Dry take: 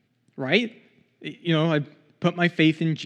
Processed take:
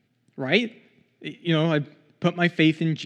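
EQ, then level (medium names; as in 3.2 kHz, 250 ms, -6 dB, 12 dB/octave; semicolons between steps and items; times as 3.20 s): band-stop 1.1 kHz, Q 12; 0.0 dB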